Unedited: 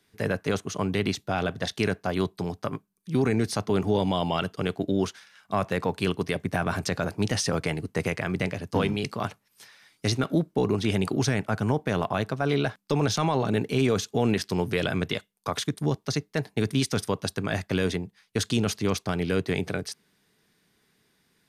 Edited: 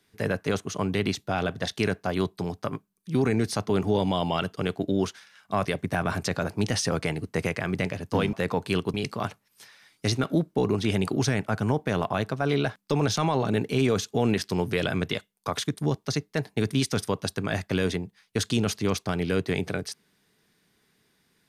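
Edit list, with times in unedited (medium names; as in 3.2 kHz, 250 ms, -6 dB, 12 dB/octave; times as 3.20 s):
5.65–6.26 s: move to 8.94 s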